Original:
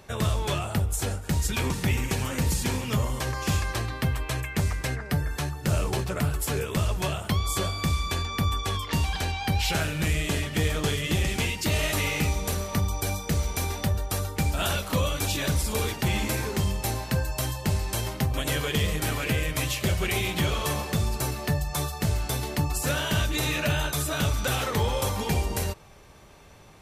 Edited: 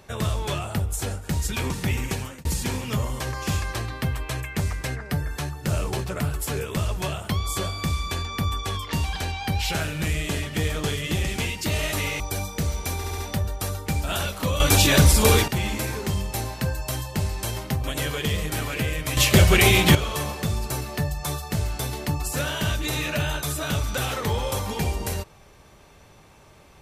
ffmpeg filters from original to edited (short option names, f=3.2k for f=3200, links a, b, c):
-filter_complex "[0:a]asplit=10[a][b][c][d][e][f][g][h][i][j];[a]atrim=end=2.45,asetpts=PTS-STARTPTS,afade=t=out:st=2.12:d=0.33[k];[b]atrim=start=2.45:end=12.202,asetpts=PTS-STARTPTS,afade=t=in:d=0.004:c=hsin[l];[c]atrim=start=12.908:end=13.752[m];[d]atrim=start=13.678:end=13.752[n];[e]atrim=start=13.678:end=13.752[o];[f]atrim=start=13.678:end=15.102[p];[g]atrim=start=15.098:end=15.982,asetpts=PTS-STARTPTS,volume=10.5dB[q];[h]atrim=start=15.978:end=19.672[r];[i]atrim=start=19.668:end=20.452,asetpts=PTS-STARTPTS,volume=10.5dB[s];[j]atrim=start=20.448[t];[k][l]concat=n=2:v=0:a=1[u];[u][m]acrossfade=d=0.004:c1=hsin:c2=hsin[v];[v][n]acrossfade=d=0.004:c1=hsin:c2=hsin[w];[w][o]acrossfade=d=0.004:c1=hsin:c2=hsin[x];[x][p]acrossfade=d=0.004:c1=hsin:c2=hsin[y];[y][q]acrossfade=d=0.004:c1=hsin:c2=hsin[z];[z][r]acrossfade=d=0.004:c1=hsin:c2=hsin[aa];[aa][s]acrossfade=d=0.004:c1=hsin:c2=hsin[ab];[ab][t]acrossfade=d=0.004:c1=hsin:c2=hsin"